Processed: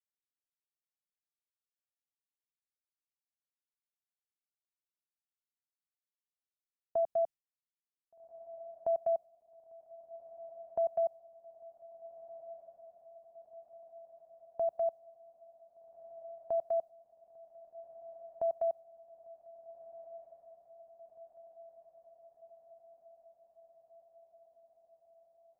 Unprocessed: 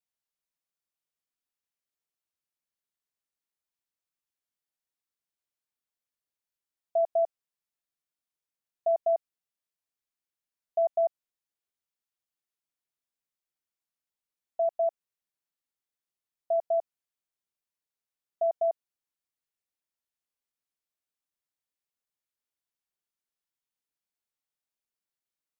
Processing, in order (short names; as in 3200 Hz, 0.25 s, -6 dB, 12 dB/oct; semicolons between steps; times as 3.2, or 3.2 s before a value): gate with hold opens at -28 dBFS; tone controls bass +10 dB, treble +3 dB; diffused feedback echo 1.587 s, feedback 68%, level -15.5 dB; gain -5.5 dB